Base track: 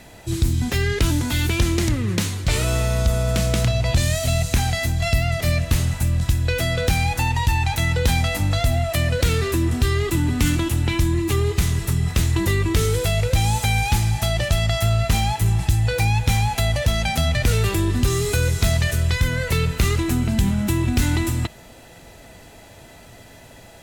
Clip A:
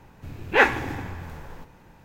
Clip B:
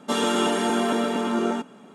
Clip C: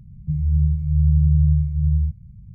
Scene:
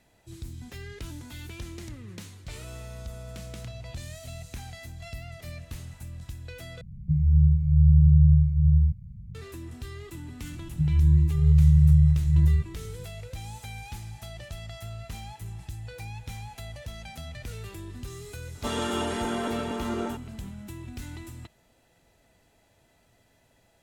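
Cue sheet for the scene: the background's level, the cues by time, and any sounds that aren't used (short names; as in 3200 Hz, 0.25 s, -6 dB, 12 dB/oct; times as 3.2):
base track -20 dB
6.81 replace with C -0.5 dB
10.51 add C -1 dB + mismatched tape noise reduction decoder only
18.55 add B -7 dB
not used: A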